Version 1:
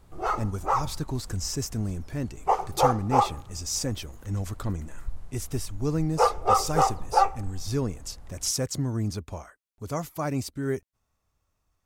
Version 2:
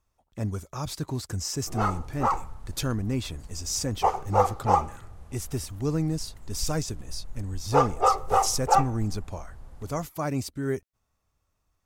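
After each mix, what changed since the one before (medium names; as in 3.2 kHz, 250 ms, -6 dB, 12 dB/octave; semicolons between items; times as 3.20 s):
background: entry +1.55 s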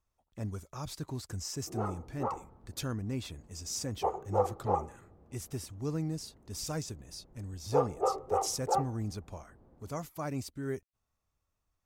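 speech -7.5 dB; background: add band-pass filter 320 Hz, Q 1.3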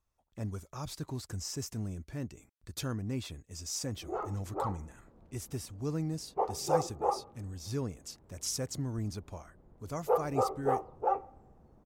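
background: entry +2.35 s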